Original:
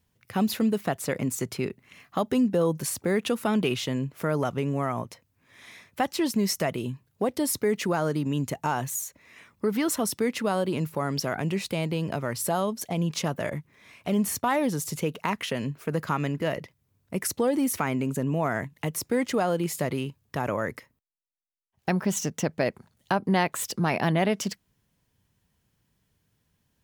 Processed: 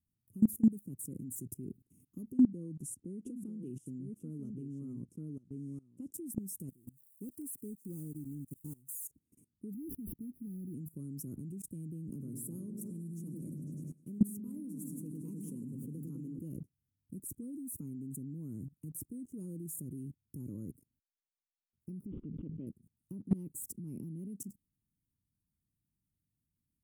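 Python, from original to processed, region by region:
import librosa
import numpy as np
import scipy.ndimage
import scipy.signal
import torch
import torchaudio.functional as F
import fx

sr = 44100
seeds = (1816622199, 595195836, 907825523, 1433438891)

y = fx.chain(x, sr, fx.lowpass(hz=6200.0, slope=12),
    fx.low_shelf(hz=110.0, db=-8.5),
    fx.echo_single(ms=939, db=-9.0), at=(2.32, 6.14))
y = fx.chain(y, sr, fx.crossing_spikes(level_db=-28.0),
    fx.upward_expand(threshold_db=-35.0, expansion=2.5), at=(6.69, 9.05))
y = fx.chain(y, sr, fx.curve_eq(hz=(260.0, 710.0, 5600.0), db=(0, -18, -3)),
    fx.sample_hold(seeds[0], rate_hz=11000.0, jitter_pct=20),
    fx.brickwall_bandstop(low_hz=2300.0, high_hz=9700.0), at=(9.74, 10.74))
y = fx.chain(y, sr, fx.highpass(hz=150.0, slope=12),
    fx.notch(hz=720.0, q=7.0),
    fx.echo_opening(ms=101, hz=400, octaves=1, feedback_pct=70, wet_db=-3), at=(12.09, 16.39))
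y = fx.chain(y, sr, fx.low_shelf(hz=340.0, db=-9.5),
    fx.resample_bad(factor=6, down='none', up='filtered'),
    fx.pre_swell(db_per_s=51.0), at=(22.06, 22.67))
y = scipy.signal.sosfilt(scipy.signal.ellip(3, 1.0, 40, [300.0, 8800.0], 'bandstop', fs=sr, output='sos'), y)
y = fx.level_steps(y, sr, step_db=22)
y = F.gain(torch.from_numpy(y), 1.5).numpy()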